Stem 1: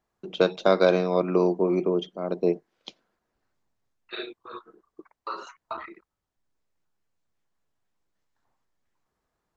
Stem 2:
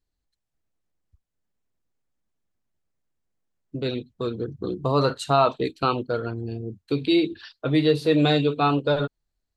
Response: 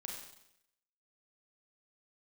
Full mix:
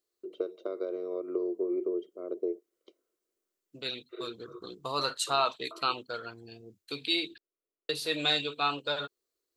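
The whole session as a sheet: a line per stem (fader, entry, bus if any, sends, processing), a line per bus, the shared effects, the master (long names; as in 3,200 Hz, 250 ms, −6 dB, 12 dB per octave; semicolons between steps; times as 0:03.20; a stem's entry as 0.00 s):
−2.0 dB, 0.00 s, no send, downward compressor 10 to 1, threshold −23 dBFS, peak gain reduction 10 dB; moving average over 52 samples; low shelf with overshoot 250 Hz −13 dB, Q 3
−9.0 dB, 0.00 s, muted 0:07.38–0:07.89, no send, tilt shelving filter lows −4.5 dB, about 680 Hz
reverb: not used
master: spectral tilt +3 dB per octave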